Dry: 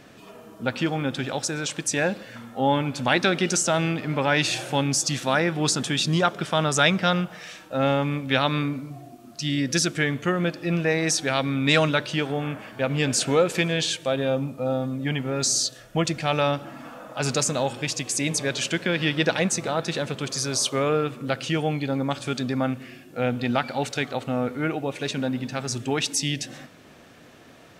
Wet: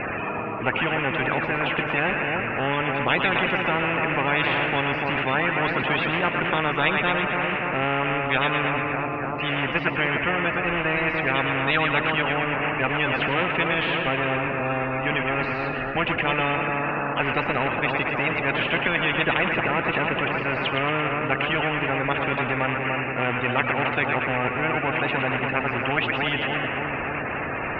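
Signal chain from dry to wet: coarse spectral quantiser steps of 30 dB; rippled Chebyshev low-pass 2.7 kHz, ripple 3 dB; two-band feedback delay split 1.2 kHz, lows 292 ms, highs 114 ms, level -9 dB; spectrum-flattening compressor 4:1; trim +3 dB

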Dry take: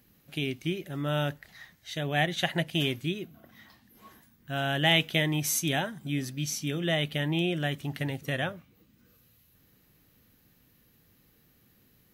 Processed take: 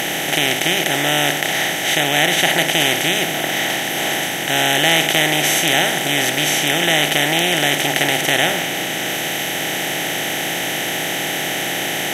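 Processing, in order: spectral levelling over time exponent 0.2; peaking EQ 82 Hz -9 dB 2.8 oct; in parallel at -9 dB: sine folder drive 5 dB, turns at -1 dBFS; on the sum: trim -1 dB

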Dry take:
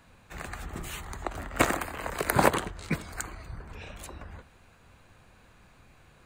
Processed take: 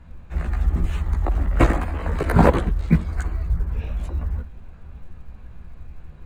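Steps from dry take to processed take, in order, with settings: chorus voices 6, 0.87 Hz, delay 15 ms, depth 3.1 ms; RIAA curve playback; short-mantissa float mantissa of 6-bit; trim +5.5 dB

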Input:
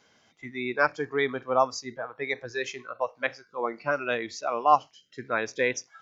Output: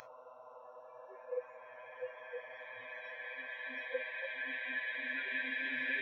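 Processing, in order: Paulstretch 40×, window 0.50 s, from 2.99 s; spectral noise reduction 24 dB; trim +1 dB

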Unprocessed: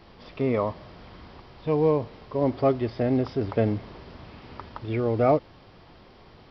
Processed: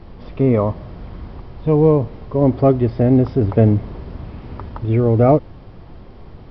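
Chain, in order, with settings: tilt EQ -3 dB/octave; trim +4.5 dB

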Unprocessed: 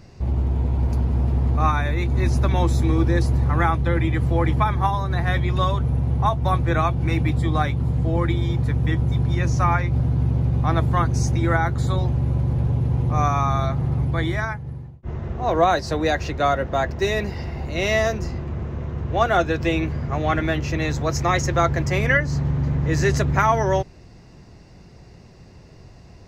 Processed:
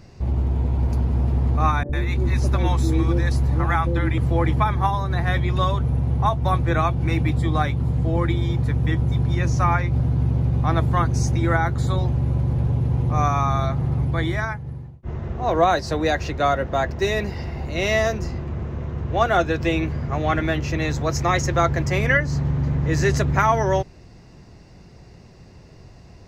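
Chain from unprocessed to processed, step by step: 1.83–4.18 s: three bands offset in time mids, lows, highs 60/100 ms, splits 150/570 Hz

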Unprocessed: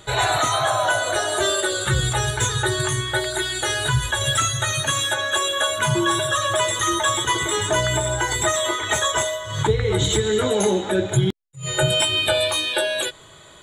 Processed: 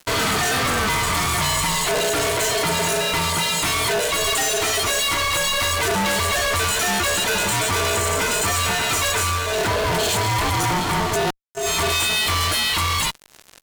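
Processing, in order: ring modulator 540 Hz; fuzz box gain 38 dB, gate -41 dBFS; trim -5.5 dB

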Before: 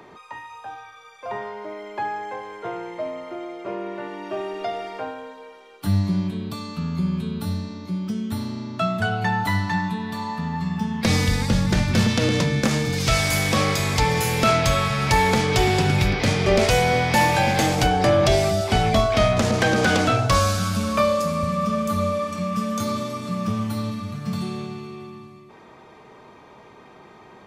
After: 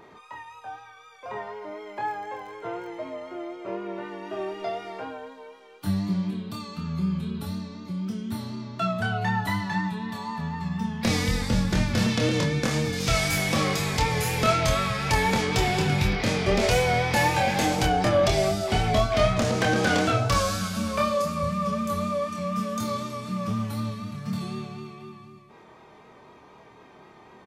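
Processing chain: 1.89–3.03 s: crackle 28 per s -37 dBFS; vibrato 4 Hz 37 cents; doubling 26 ms -4.5 dB; trim -5 dB

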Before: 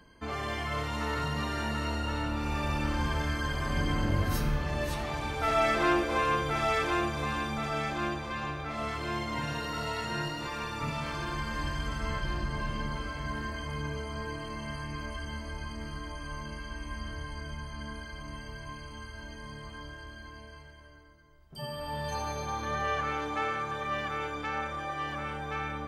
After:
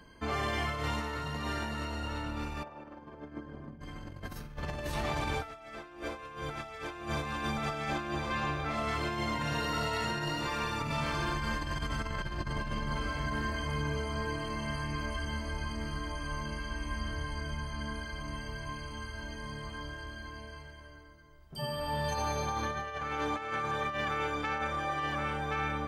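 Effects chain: compressor with a negative ratio -34 dBFS, ratio -0.5; 2.62–3.80 s: band-pass filter 700 Hz -> 210 Hz, Q 1.1

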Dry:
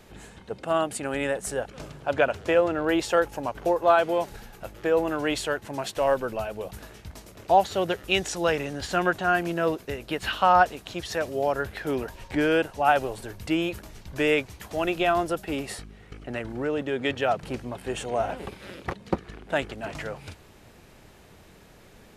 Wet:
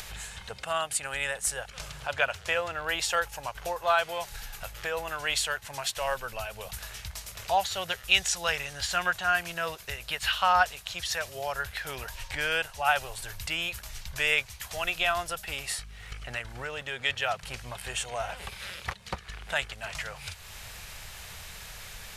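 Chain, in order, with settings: amplifier tone stack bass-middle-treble 10-0-10; upward compressor, threshold -38 dBFS; trim +6 dB

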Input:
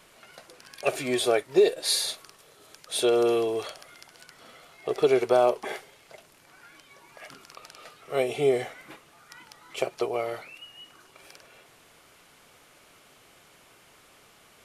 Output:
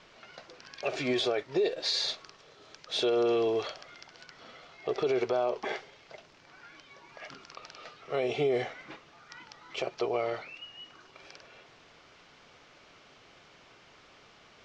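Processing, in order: steep low-pass 6 kHz 36 dB/octave; peak limiter -20 dBFS, peak gain reduction 10 dB

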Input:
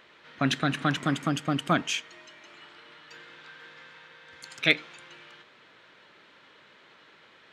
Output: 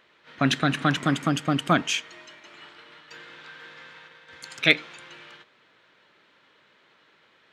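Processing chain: gate -51 dBFS, range -8 dB; trim +3.5 dB

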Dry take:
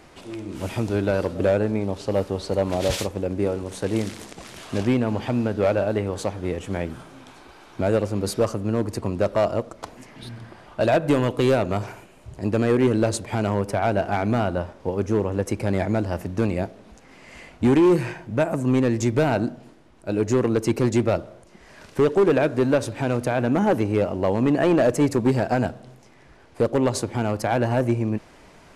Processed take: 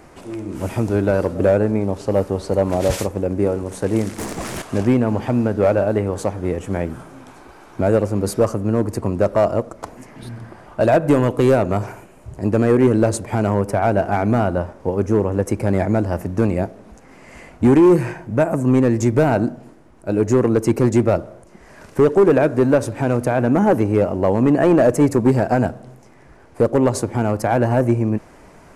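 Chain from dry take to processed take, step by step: peaking EQ 3.6 kHz -9.5 dB 1.3 oct; 4.18–4.62 s: waveshaping leveller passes 3; trim +5 dB

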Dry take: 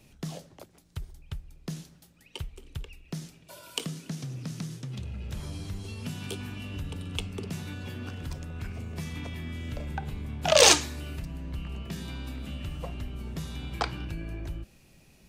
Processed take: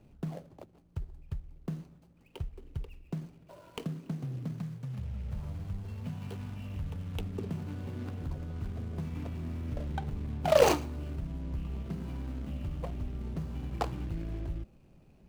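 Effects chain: median filter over 25 samples; 4.58–7.18 s: peaking EQ 330 Hz -12.5 dB 0.65 oct

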